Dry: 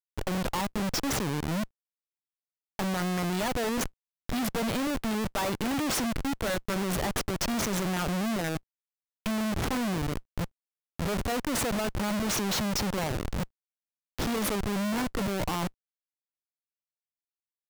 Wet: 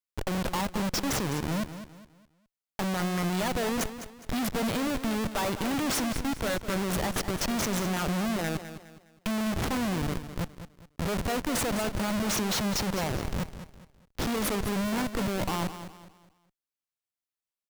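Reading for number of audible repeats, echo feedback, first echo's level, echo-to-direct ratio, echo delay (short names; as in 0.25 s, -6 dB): 3, 35%, -11.5 dB, -11.0 dB, 0.206 s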